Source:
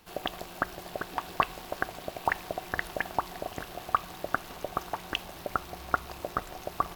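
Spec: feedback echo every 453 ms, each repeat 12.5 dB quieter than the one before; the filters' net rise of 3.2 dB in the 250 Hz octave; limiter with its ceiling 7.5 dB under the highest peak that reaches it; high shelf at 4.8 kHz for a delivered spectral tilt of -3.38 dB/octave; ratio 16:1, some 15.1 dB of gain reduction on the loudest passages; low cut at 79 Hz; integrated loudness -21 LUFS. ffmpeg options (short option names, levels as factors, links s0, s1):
-af "highpass=79,equalizer=f=250:t=o:g=4.5,highshelf=f=4800:g=3.5,acompressor=threshold=0.0178:ratio=16,alimiter=level_in=1.26:limit=0.0631:level=0:latency=1,volume=0.794,aecho=1:1:453|906|1359:0.237|0.0569|0.0137,volume=14.1"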